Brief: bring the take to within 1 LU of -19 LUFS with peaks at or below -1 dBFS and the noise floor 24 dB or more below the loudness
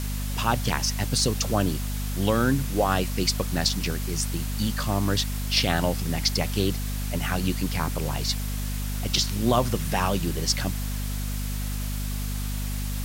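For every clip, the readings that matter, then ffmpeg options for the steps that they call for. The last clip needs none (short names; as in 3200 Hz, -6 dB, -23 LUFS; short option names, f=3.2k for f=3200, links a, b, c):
hum 50 Hz; harmonics up to 250 Hz; hum level -27 dBFS; noise floor -29 dBFS; noise floor target -50 dBFS; loudness -26.0 LUFS; peak -7.0 dBFS; loudness target -19.0 LUFS
-> -af "bandreject=f=50:t=h:w=4,bandreject=f=100:t=h:w=4,bandreject=f=150:t=h:w=4,bandreject=f=200:t=h:w=4,bandreject=f=250:t=h:w=4"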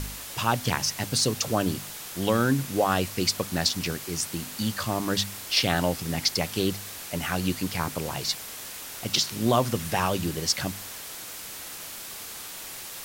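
hum none; noise floor -39 dBFS; noise floor target -52 dBFS
-> -af "afftdn=nr=13:nf=-39"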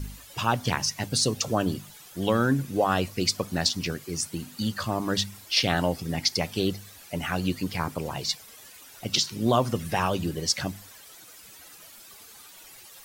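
noise floor -49 dBFS; noise floor target -51 dBFS
-> -af "afftdn=nr=6:nf=-49"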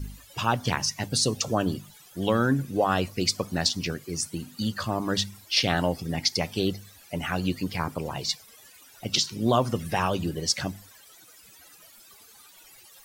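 noise floor -53 dBFS; loudness -27.0 LUFS; peak -7.5 dBFS; loudness target -19.0 LUFS
-> -af "volume=8dB,alimiter=limit=-1dB:level=0:latency=1"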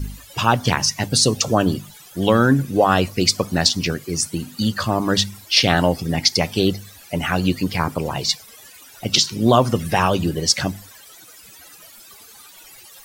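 loudness -19.0 LUFS; peak -1.0 dBFS; noise floor -45 dBFS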